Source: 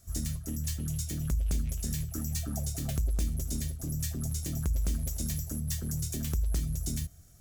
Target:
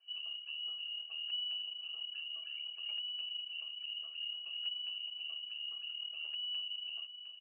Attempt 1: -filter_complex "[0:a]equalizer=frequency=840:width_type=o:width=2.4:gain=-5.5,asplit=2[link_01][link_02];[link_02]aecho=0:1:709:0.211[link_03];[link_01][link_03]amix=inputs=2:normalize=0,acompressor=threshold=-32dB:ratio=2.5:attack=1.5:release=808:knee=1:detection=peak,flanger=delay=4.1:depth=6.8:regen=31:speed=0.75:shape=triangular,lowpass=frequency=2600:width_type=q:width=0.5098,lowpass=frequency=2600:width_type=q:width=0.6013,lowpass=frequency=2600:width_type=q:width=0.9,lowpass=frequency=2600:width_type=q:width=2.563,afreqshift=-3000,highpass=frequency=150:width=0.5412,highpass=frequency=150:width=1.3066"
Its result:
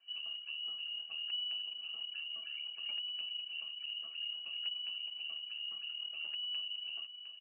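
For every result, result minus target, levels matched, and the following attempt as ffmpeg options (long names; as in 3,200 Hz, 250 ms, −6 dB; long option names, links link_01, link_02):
250 Hz band +8.0 dB; 1,000 Hz band +3.0 dB
-filter_complex "[0:a]equalizer=frequency=840:width_type=o:width=2.4:gain=-5.5,asplit=2[link_01][link_02];[link_02]aecho=0:1:709:0.211[link_03];[link_01][link_03]amix=inputs=2:normalize=0,acompressor=threshold=-32dB:ratio=2.5:attack=1.5:release=808:knee=1:detection=peak,flanger=delay=4.1:depth=6.8:regen=31:speed=0.75:shape=triangular,lowpass=frequency=2600:width_type=q:width=0.5098,lowpass=frequency=2600:width_type=q:width=0.6013,lowpass=frequency=2600:width_type=q:width=0.9,lowpass=frequency=2600:width_type=q:width=2.563,afreqshift=-3000,highpass=frequency=330:width=0.5412,highpass=frequency=330:width=1.3066"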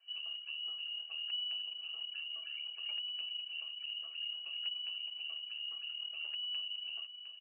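1,000 Hz band +3.0 dB
-filter_complex "[0:a]equalizer=frequency=840:width_type=o:width=2.4:gain=-13,asplit=2[link_01][link_02];[link_02]aecho=0:1:709:0.211[link_03];[link_01][link_03]amix=inputs=2:normalize=0,acompressor=threshold=-32dB:ratio=2.5:attack=1.5:release=808:knee=1:detection=peak,flanger=delay=4.1:depth=6.8:regen=31:speed=0.75:shape=triangular,lowpass=frequency=2600:width_type=q:width=0.5098,lowpass=frequency=2600:width_type=q:width=0.6013,lowpass=frequency=2600:width_type=q:width=0.9,lowpass=frequency=2600:width_type=q:width=2.563,afreqshift=-3000,highpass=frequency=330:width=0.5412,highpass=frequency=330:width=1.3066"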